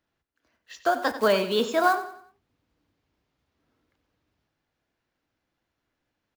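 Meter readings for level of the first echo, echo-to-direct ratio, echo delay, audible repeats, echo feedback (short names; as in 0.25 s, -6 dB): -13.0 dB, -12.5 dB, 92 ms, 3, 39%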